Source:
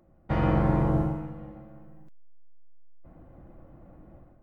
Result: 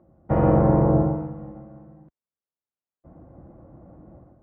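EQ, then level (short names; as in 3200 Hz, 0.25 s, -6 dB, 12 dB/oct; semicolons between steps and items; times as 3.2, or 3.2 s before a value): HPF 61 Hz; LPF 1100 Hz 12 dB/oct; dynamic EQ 520 Hz, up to +6 dB, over -44 dBFS, Q 1.6; +5.0 dB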